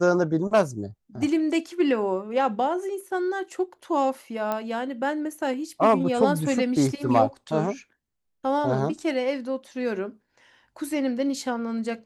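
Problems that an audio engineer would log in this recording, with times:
4.52 s: pop -14 dBFS

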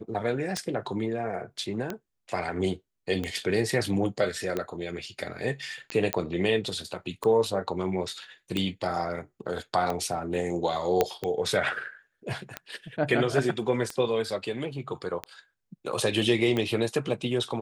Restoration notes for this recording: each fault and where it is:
tick 45 rpm -16 dBFS
6.13 s: pop -8 dBFS
11.01 s: pop -8 dBFS

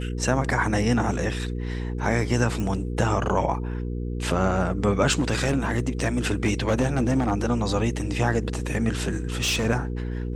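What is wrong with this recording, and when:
hum 60 Hz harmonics 8 -29 dBFS
2.60 s: pop
5.11–7.32 s: clipped -16 dBFS
9.10–9.67 s: clipped -20 dBFS

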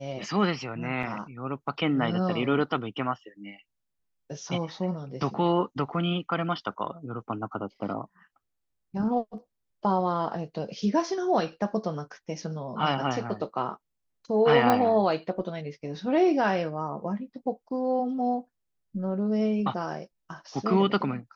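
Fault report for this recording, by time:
1.03 s: dropout 2.7 ms
14.70 s: pop -9 dBFS

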